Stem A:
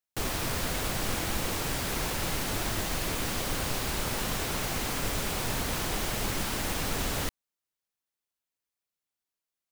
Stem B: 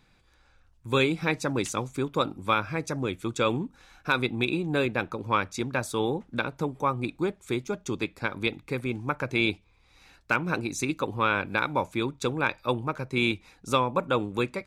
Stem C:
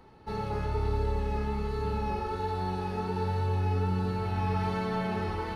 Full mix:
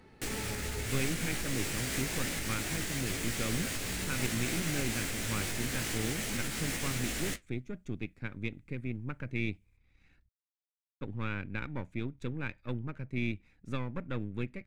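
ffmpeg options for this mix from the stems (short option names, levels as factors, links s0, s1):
-filter_complex "[0:a]flanger=delay=17:depth=2.5:speed=0.25,adelay=50,volume=1.26[s0];[1:a]aeval=exprs='if(lt(val(0),0),0.447*val(0),val(0))':c=same,bass=f=250:g=12,treble=f=4000:g=-14,volume=0.211,asplit=3[s1][s2][s3];[s1]atrim=end=10.29,asetpts=PTS-STARTPTS,afade=t=out:st=10.286:d=0.004:c=hsin[s4];[s2]atrim=start=10.29:end=11.01,asetpts=PTS-STARTPTS,volume=0[s5];[s3]atrim=start=11.01,asetpts=PTS-STARTPTS,afade=t=in:d=0.004:c=hsin[s6];[s4][s5][s6]concat=n=3:v=0:a=1,asplit=2[s7][s8];[2:a]volume=1.12[s9];[s8]apad=whole_len=245171[s10];[s9][s10]sidechaincompress=threshold=0.00158:ratio=8:attack=16:release=390[s11];[s0][s11]amix=inputs=2:normalize=0,flanger=delay=9.4:depth=8.2:regen=-62:speed=1.9:shape=triangular,alimiter=level_in=1.5:limit=0.0631:level=0:latency=1:release=153,volume=0.668,volume=1[s12];[s7][s12]amix=inputs=2:normalize=0,equalizer=f=250:t=o:w=1:g=4,equalizer=f=1000:t=o:w=1:g=-7,equalizer=f=2000:t=o:w=1:g=8,equalizer=f=8000:t=o:w=1:g=7"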